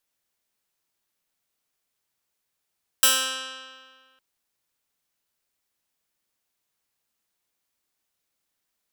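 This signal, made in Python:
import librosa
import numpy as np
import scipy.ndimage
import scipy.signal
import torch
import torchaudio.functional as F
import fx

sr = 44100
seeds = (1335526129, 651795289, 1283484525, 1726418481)

y = fx.pluck(sr, length_s=1.16, note=60, decay_s=1.79, pick=0.12, brightness='bright')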